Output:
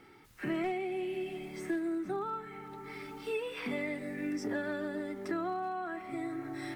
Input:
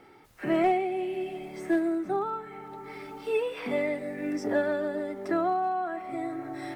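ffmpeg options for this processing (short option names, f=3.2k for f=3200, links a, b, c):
-af "equalizer=f=640:t=o:w=1.2:g=-9,acompressor=threshold=-32dB:ratio=3"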